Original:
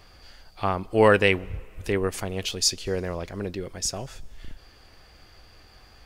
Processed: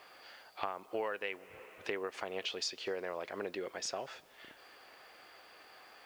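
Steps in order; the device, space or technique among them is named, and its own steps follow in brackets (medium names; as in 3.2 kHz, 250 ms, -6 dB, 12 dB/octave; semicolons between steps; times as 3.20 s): baby monitor (band-pass 490–3200 Hz; compression 10:1, threshold -35 dBFS, peak gain reduction 21 dB; white noise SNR 29 dB); trim +1 dB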